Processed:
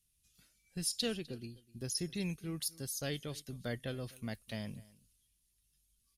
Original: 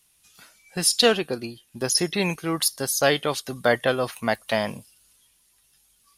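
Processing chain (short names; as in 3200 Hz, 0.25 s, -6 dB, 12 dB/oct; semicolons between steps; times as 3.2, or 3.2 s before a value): passive tone stack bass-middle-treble 10-0-1; echo 0.253 s -22 dB; gain +5.5 dB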